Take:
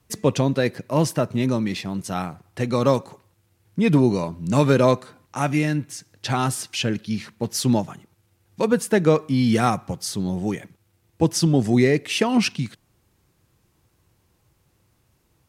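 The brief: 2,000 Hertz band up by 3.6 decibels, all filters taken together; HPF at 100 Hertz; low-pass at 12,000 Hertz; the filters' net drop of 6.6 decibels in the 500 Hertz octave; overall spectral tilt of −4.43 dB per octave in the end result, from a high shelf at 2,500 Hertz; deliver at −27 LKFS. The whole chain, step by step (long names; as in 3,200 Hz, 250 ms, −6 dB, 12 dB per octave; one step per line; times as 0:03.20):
high-pass filter 100 Hz
low-pass filter 12,000 Hz
parametric band 500 Hz −8.5 dB
parametric band 2,000 Hz +3 dB
high-shelf EQ 2,500 Hz +4 dB
level −3.5 dB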